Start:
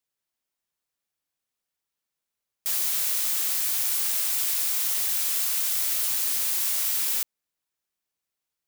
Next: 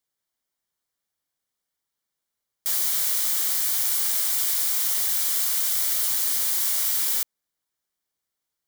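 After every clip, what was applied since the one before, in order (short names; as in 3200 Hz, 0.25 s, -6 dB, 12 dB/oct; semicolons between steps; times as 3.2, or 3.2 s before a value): notch 2600 Hz, Q 5.8; gain +2 dB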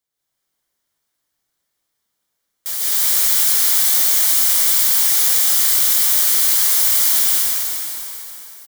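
doubler 24 ms -13 dB; plate-style reverb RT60 3.7 s, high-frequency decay 0.85×, pre-delay 0.115 s, DRR -8.5 dB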